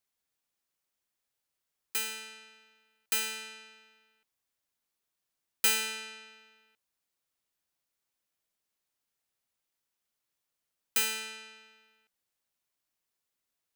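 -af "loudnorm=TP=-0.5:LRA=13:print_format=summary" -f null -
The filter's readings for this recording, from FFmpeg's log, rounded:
Input Integrated:    -31.2 LUFS
Input True Peak:     -11.4 dBTP
Input LRA:             7.0 LU
Input Threshold:     -44.0 LUFS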